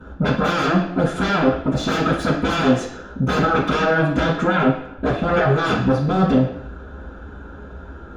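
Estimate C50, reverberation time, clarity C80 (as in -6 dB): 5.0 dB, 0.70 s, 9.0 dB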